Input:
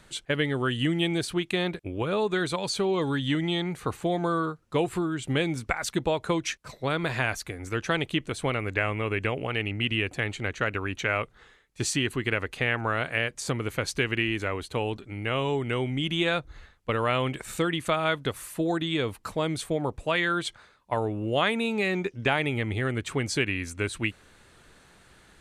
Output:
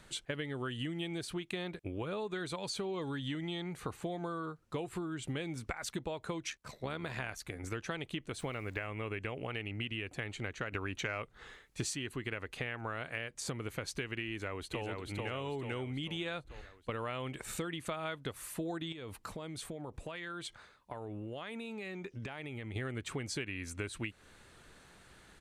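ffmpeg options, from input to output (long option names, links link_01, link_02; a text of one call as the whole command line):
ffmpeg -i in.wav -filter_complex "[0:a]asettb=1/sr,asplit=3[link_01][link_02][link_03];[link_01]atrim=end=6.504[link_04];[link_02]atrim=start=6.5:end=7.64,asetpts=PTS-STARTPTS,afade=type=in:duration=0.004:curve=qsin,afade=type=out:start_time=1.136:duration=0.004:curve=qsin,tremolo=f=73:d=0.519[link_05];[link_03]atrim=start=7.636[link_06];[link_04][link_05]acrossfade=duration=0.004:curve1=hsin:curve2=qsin[link_07];[link_07][link_06]acrossfade=duration=0.004:curve1=qsin:curve2=hsin,asettb=1/sr,asplit=3[link_08][link_09][link_10];[link_08]atrim=end=8.394[link_11];[link_09]atrim=start=8.39:end=8.87,asetpts=PTS-STARTPTS,afade=type=in:duration=0.004:curve=qsin,afade=type=out:start_time=0.476:duration=0.004:curve=qsin,aeval=exprs='val(0)*gte(abs(val(0)),0.00376)':channel_layout=same[link_12];[link_10]atrim=start=8.866[link_13];[link_11][link_12]acrossfade=duration=0.004:curve1=hsin:curve2=qsin[link_14];[link_14][link_13]acrossfade=duration=0.004:curve1=qsin:curve2=hsin,asettb=1/sr,asplit=3[link_15][link_16][link_17];[link_15]atrim=end=10.724[link_18];[link_16]atrim=start=10.72:end=11.95,asetpts=PTS-STARTPTS,afade=type=in:duration=0.004:curve=qsin,afade=type=out:start_time=1.226:duration=0.004:curve=qsin,acontrast=89[link_19];[link_17]atrim=start=11.946[link_20];[link_18][link_19]acrossfade=duration=0.004:curve1=hsin:curve2=qsin[link_21];[link_21][link_20]acrossfade=duration=0.004:curve1=qsin:curve2=hsin,asplit=2[link_22][link_23];[link_23]afade=type=in:start_time=14.29:duration=0.01,afade=type=out:start_time=14.85:duration=0.01,aecho=0:1:440|880|1320|1760|2200|2640|3080:0.707946|0.353973|0.176986|0.0884932|0.0442466|0.0221233|0.0110617[link_24];[link_22][link_24]amix=inputs=2:normalize=0,asettb=1/sr,asplit=3[link_25][link_26][link_27];[link_25]atrim=end=18.924[link_28];[link_26]atrim=start=18.92:end=22.76,asetpts=PTS-STARTPTS,afade=type=in:duration=0.004:curve=qsin,afade=type=out:start_time=3.836:duration=0.004:curve=qsin,acompressor=threshold=-35dB:ratio=16:attack=3.2:release=140:knee=1:detection=peak[link_29];[link_27]atrim=start=22.756[link_30];[link_28][link_29]acrossfade=duration=0.004:curve1=hsin:curve2=qsin[link_31];[link_31][link_30]acrossfade=duration=0.004:curve1=qsin:curve2=hsin,acompressor=threshold=-33dB:ratio=5,volume=-3dB" out.wav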